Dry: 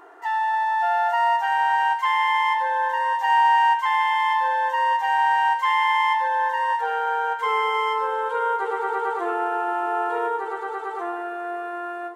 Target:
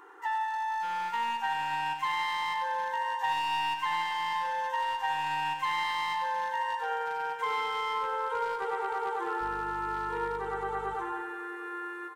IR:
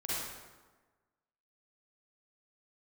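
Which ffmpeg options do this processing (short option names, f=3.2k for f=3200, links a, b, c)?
-filter_complex "[0:a]equalizer=f=4.6k:w=7.4:g=-5,asoftclip=type=hard:threshold=-17.5dB,acompressor=threshold=-24dB:ratio=6,asuperstop=centerf=650:order=12:qfactor=3.4,lowshelf=f=430:g=-4.5,asettb=1/sr,asplit=3[a][b][c];[a]atrim=end=9.414[d];[b]atrim=start=9.41:end=10.95,asetpts=PTS-STARTPTS,afade=t=in:d=0.004:c=qsin,afade=t=out:st=1.536:d=0.004:c=qsin,aeval=exprs='val(0)+0.00708*(sin(2*PI*50*n/s)+sin(2*PI*2*50*n/s)/2+sin(2*PI*3*50*n/s)/3+sin(2*PI*4*50*n/s)/4+sin(2*PI*5*50*n/s)/5)':c=same[e];[c]atrim=start=10.946[f];[d][e]acrossfade=d=0.004:c1=hsin:c2=qsin[g];[g][f]acrossfade=d=0.004:c1=qsin:c2=hsin,asplit=2[h][i];[i]aecho=0:1:94|188|282|376|470|564:0.422|0.223|0.118|0.0628|0.0333|0.0176[j];[h][j]amix=inputs=2:normalize=0,volume=-3dB"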